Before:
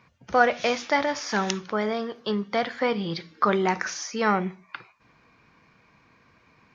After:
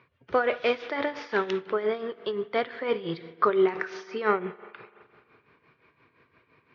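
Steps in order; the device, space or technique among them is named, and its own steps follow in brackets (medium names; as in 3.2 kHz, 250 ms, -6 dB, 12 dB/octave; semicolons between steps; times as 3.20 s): combo amplifier with spring reverb and tremolo (spring tank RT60 2.3 s, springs 42 ms, chirp 80 ms, DRR 15.5 dB; tremolo 5.8 Hz, depth 70%; cabinet simulation 83–3700 Hz, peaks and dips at 200 Hz -10 dB, 400 Hz +8 dB, 780 Hz -6 dB)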